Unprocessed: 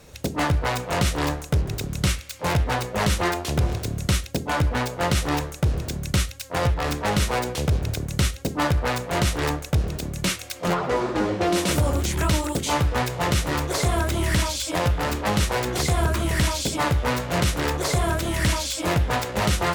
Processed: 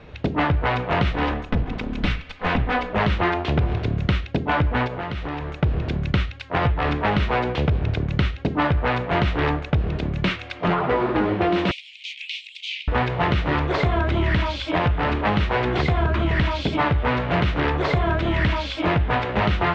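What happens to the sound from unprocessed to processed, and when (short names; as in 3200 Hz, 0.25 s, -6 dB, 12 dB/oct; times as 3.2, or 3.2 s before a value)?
1.12–2.93 minimum comb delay 4 ms
4.87–5.63 compressor 16:1, threshold -29 dBFS
11.71–12.88 steep high-pass 2300 Hz 72 dB/oct
whole clip: LPF 3200 Hz 24 dB/oct; notch 530 Hz, Q 12; compressor, threshold -22 dBFS; gain +5.5 dB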